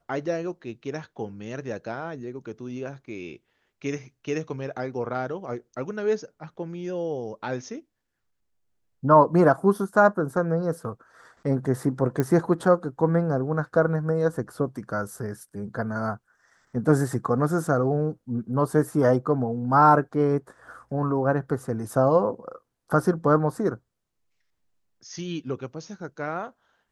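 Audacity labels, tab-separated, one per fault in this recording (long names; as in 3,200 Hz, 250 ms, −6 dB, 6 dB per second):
12.200000	12.200000	click −12 dBFS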